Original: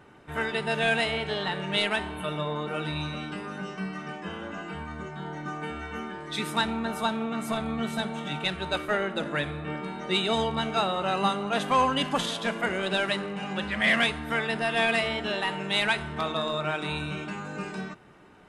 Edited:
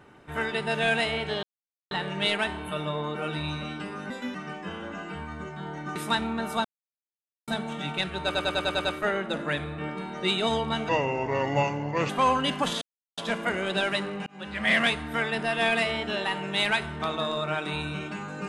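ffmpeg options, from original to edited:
-filter_complex "[0:a]asplit=17[a][b][c][d][e][f][g][h][i][j][k][l][m][n][o][p][q];[a]atrim=end=1.43,asetpts=PTS-STARTPTS,afade=t=out:st=1.426:d=0.004:c=hsin,apad=pad_dur=0.48[r];[b]atrim=start=1.43:end=3.624,asetpts=PTS-STARTPTS,afade=t=in:d=0.004:c=hsin[s];[c]atrim=start=3.62:end=3.94,asetpts=PTS-STARTPTS,asetrate=57330,aresample=44100,atrim=end_sample=10855,asetpts=PTS-STARTPTS[t];[d]atrim=start=3.936:end=5.552[u];[e]atrim=start=6.418:end=7.11,asetpts=PTS-STARTPTS,afade=t=out:st=0.688:d=0.004:c=hsin[v];[f]atrim=start=7.11:end=7.94,asetpts=PTS-STARTPTS,volume=0[w];[g]atrim=start=7.94:end=8.812,asetpts=PTS-STARTPTS,afade=t=in:d=0.004:c=hsin[x];[h]atrim=start=8.708:end=8.812[y];[i]atrim=start=8.708:end=8.812[z];[j]atrim=start=8.708:end=8.812[aa];[k]atrim=start=8.708:end=8.812[ab];[l]atrim=start=8.708:end=8.812[ac];[m]atrim=start=8.708:end=10.754[ad];[n]atrim=start=10.75:end=11.62,asetpts=PTS-STARTPTS,asetrate=31752,aresample=44100[ae];[o]atrim=start=11.616:end=12.34,asetpts=PTS-STARTPTS,afade=t=out:st=0.72:d=0.004:c=hsin,apad=pad_dur=0.36[af];[p]atrim=start=12.34:end=13.43,asetpts=PTS-STARTPTS,afade=t=in:d=0.004:c=hsin,afade=t=out:st=1.086:d=0.004:c=hsin[ag];[q]atrim=start=13.43,asetpts=PTS-STARTPTS,afade=t=in:d=0.4[ah];[r][s]concat=n=2:v=0:a=1[ai];[ai][t]acrossfade=d=0.004:c1=hsin:c2=hsin[aj];[aj][u]acrossfade=d=0.004:c1=hsin:c2=hsin[ak];[v][w][x]concat=n=3:v=0:a=1[al];[ak][al]acrossfade=d=0.004:c1=hsin:c2=hsin[am];[am][y]acrossfade=d=0.004:c1=hsin:c2=hsin[an];[an][z]acrossfade=d=0.004:c1=hsin:c2=hsin[ao];[ao][aa]acrossfade=d=0.004:c1=hsin:c2=hsin[ap];[ap][ab]acrossfade=d=0.004:c1=hsin:c2=hsin[aq];[aq][ac]acrossfade=d=0.004:c1=hsin:c2=hsin[ar];[ar][ad]acrossfade=d=0.004:c1=hsin:c2=hsin[as];[as][ae]acrossfade=d=0.004:c1=hsin:c2=hsin[at];[af][ag][ah]concat=n=3:v=0:a=1[au];[at][au]acrossfade=d=0.004:c1=hsin:c2=hsin"

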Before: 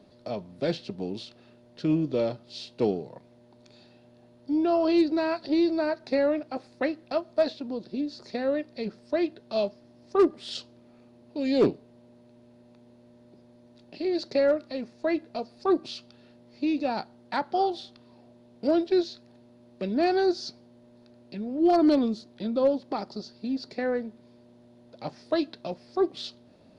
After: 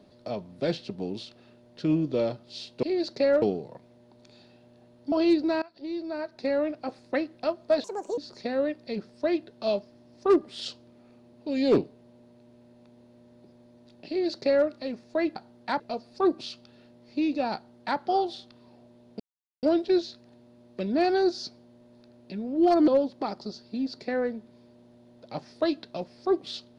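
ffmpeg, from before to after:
-filter_complex "[0:a]asplit=11[a][b][c][d][e][f][g][h][i][j][k];[a]atrim=end=2.832[l];[b]atrim=start=13.978:end=14.572[m];[c]atrim=start=2.828:end=4.532[n];[d]atrim=start=4.798:end=5.3,asetpts=PTS-STARTPTS,afade=t=out:st=0.498:d=0.004:c=hsin:silence=0.0749894[o];[e]atrim=start=5.3:end=7.524,asetpts=PTS-STARTPTS,afade=t=in:d=1.25:silence=0.0749894[p];[f]atrim=start=7.52:end=8.07,asetpts=PTS-STARTPTS,asetrate=71883,aresample=44100,atrim=end_sample=14880,asetpts=PTS-STARTPTS[q];[g]atrim=start=8.066:end=15.252[r];[h]atrim=start=16.998:end=17.442[s];[i]atrim=start=15.248:end=18.65,asetpts=PTS-STARTPTS,afade=t=out:st=3.398:d=0.004:c=hsin,apad=pad_dur=0.43[t];[j]atrim=start=18.65:end=21.902,asetpts=PTS-STARTPTS,afade=t=in:d=0.004:c=hsin[u];[k]atrim=start=22.578[v];[l][m]acrossfade=d=0.004:c1=hsin:c2=hsin[w];[w][n]acrossfade=d=0.004:c1=hsin:c2=hsin[x];[o][p]concat=n=2:v=0:a=1[y];[x][y]acrossfade=d=0.004:c1=hsin:c2=hsin[z];[z][q]acrossfade=d=0.004:c1=hsin:c2=hsin[aa];[aa][r]acrossfade=d=0.004:c1=hsin:c2=hsin[ab];[ab][s]acrossfade=d=0.004:c1=hsin:c2=hsin[ac];[t][u]concat=n=2:v=0:a=1[ad];[ac][ad]acrossfade=d=0.004:c1=hsin:c2=hsin[ae];[ae][v]acrossfade=d=0.004:c1=hsin:c2=hsin"

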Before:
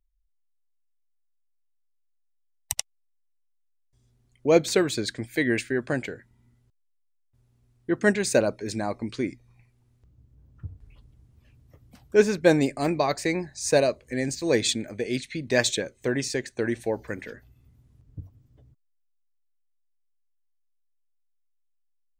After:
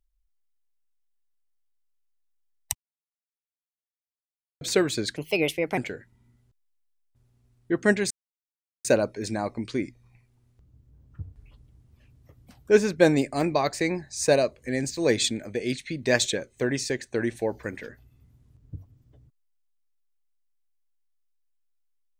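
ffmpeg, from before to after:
-filter_complex "[0:a]asplit=6[a][b][c][d][e][f];[a]atrim=end=2.75,asetpts=PTS-STARTPTS,afade=t=out:st=2.746:d=0.004:c=hsin[g];[b]atrim=start=2.75:end=4.61,asetpts=PTS-STARTPTS,volume=0[h];[c]atrim=start=4.61:end=5.164,asetpts=PTS-STARTPTS,afade=t=in:d=0.004:c=hsin[i];[d]atrim=start=5.16:end=5.96,asetpts=PTS-STARTPTS,asetrate=57330,aresample=44100,atrim=end_sample=27138,asetpts=PTS-STARTPTS[j];[e]atrim=start=5.956:end=8.29,asetpts=PTS-STARTPTS,afade=t=out:st=2.33:d=0.004:c=hsin,apad=pad_dur=0.74[k];[f]atrim=start=8.29,asetpts=PTS-STARTPTS,afade=t=in:d=0.004:c=hsin[l];[g][h][i]concat=n=3:v=0:a=1[m];[m][j]acrossfade=d=0.004:c1=hsin:c2=hsin[n];[k][l]concat=n=2:v=0:a=1[o];[n][o]acrossfade=d=0.004:c1=hsin:c2=hsin"

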